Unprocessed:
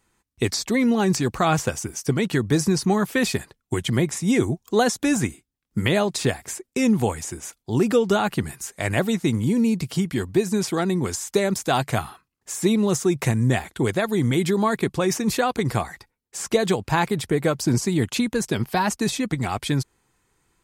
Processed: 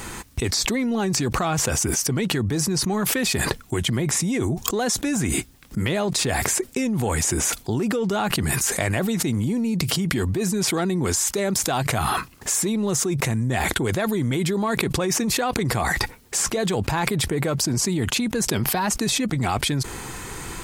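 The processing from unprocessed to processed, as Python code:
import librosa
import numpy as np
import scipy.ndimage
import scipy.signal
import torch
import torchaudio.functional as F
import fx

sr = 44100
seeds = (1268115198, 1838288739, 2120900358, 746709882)

p1 = 10.0 ** (-18.0 / 20.0) * np.tanh(x / 10.0 ** (-18.0 / 20.0))
p2 = x + (p1 * 10.0 ** (-6.5 / 20.0))
p3 = fx.env_flatten(p2, sr, amount_pct=100)
y = p3 * 10.0 ** (-10.0 / 20.0)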